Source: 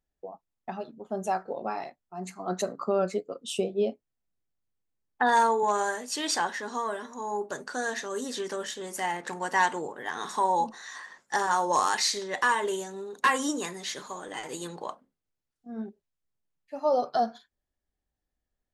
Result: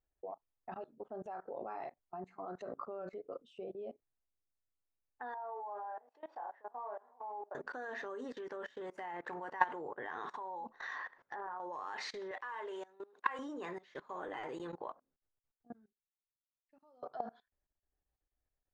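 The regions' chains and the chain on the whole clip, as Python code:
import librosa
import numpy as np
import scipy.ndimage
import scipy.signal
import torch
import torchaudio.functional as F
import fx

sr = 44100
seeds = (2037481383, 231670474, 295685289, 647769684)

y = fx.chain(x, sr, fx.law_mismatch(coded='A'),
    fx.bandpass_q(hz=730.0, q=3.9),
    fx.doubler(ms=29.0, db=-4.0), at=(5.34, 7.55))
y = fx.chain(y, sr, fx.steep_lowpass(hz=6500.0, slope=36),
    fx.env_lowpass_down(base_hz=1700.0, full_db=-25.0),
    fx.over_compress(threshold_db=-33.0, ratio=-1.0), at=(10.74, 11.6))
y = fx.chain(y, sr, fx.block_float(bits=5),
    fx.highpass(hz=700.0, slope=6), at=(12.31, 13.39))
y = fx.chain(y, sr, fx.tone_stack(knobs='6-0-2'),
    fx.notch(hz=360.0, q=7.8), at=(15.73, 17.03))
y = scipy.signal.sosfilt(scipy.signal.butter(2, 1800.0, 'lowpass', fs=sr, output='sos'), y)
y = fx.peak_eq(y, sr, hz=200.0, db=-9.5, octaves=0.71)
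y = fx.level_steps(y, sr, step_db=22)
y = F.gain(torch.from_numpy(y), 1.0).numpy()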